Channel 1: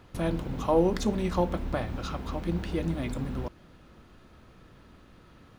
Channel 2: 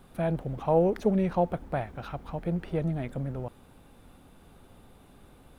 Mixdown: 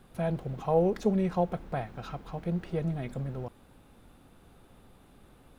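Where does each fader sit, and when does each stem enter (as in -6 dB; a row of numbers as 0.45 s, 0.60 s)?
-12.0 dB, -3.0 dB; 0.00 s, 0.00 s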